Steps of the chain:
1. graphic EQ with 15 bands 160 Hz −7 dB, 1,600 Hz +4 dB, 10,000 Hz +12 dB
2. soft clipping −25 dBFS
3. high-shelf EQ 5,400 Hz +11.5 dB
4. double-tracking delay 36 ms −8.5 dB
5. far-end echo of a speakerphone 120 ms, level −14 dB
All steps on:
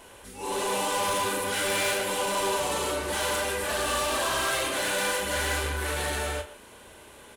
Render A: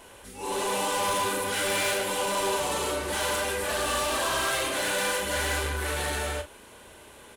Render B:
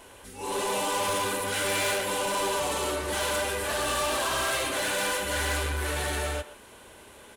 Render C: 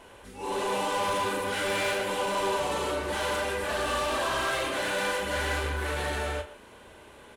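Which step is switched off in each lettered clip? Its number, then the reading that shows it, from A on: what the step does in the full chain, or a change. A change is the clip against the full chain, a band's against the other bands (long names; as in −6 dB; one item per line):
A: 5, echo-to-direct ratio −17.0 dB to none audible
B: 4, 125 Hz band +2.0 dB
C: 3, 8 kHz band −8.0 dB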